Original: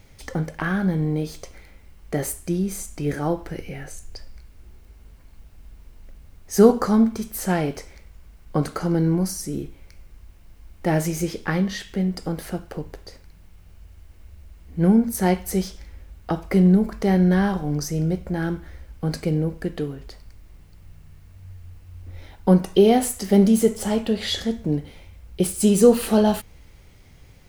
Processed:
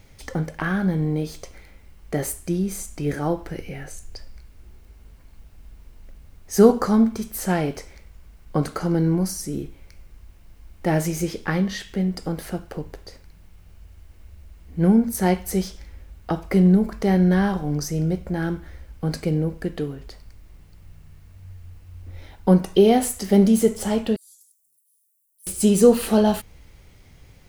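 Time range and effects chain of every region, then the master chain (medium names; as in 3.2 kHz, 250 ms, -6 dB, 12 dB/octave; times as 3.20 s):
24.16–25.47 s: inverse Chebyshev high-pass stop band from 2.3 kHz, stop band 70 dB + comb 1.9 ms, depth 46% + compression 2.5:1, threshold -49 dBFS
whole clip: none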